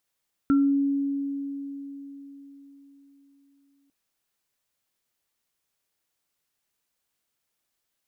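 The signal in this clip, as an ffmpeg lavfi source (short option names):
-f lavfi -i "aevalsrc='0.158*pow(10,-3*t/4.22)*sin(2*PI*279*t)+0.0422*pow(10,-3*t/0.31)*sin(2*PI*1360*t)':d=3.4:s=44100"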